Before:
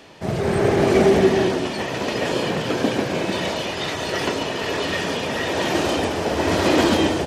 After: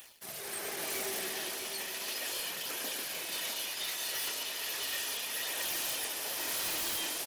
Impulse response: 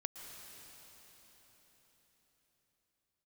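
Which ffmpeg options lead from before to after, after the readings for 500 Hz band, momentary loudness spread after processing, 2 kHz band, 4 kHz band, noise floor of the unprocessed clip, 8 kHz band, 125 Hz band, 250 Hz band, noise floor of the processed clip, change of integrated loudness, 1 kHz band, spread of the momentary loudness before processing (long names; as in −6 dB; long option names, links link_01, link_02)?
−25.5 dB, 4 LU, −13.0 dB, −8.0 dB, −28 dBFS, −0.5 dB, −33.5 dB, −29.5 dB, −42 dBFS, −13.5 dB, −19.5 dB, 8 LU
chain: -filter_complex "[0:a]aderivative,areverse,acompressor=mode=upward:threshold=-38dB:ratio=2.5,areverse,aexciter=amount=4.4:drive=4.3:freq=10000,aeval=exprs='sgn(val(0))*max(abs(val(0))-0.00266,0)':channel_layout=same,acontrast=69,flanger=delay=0.1:depth=9.1:regen=-57:speed=0.36:shape=sinusoidal,aeval=exprs='0.0473*(abs(mod(val(0)/0.0473+3,4)-2)-1)':channel_layout=same,asplit=2[link_01][link_02];[link_02]aecho=0:1:652:0.398[link_03];[link_01][link_03]amix=inputs=2:normalize=0,volume=-3dB"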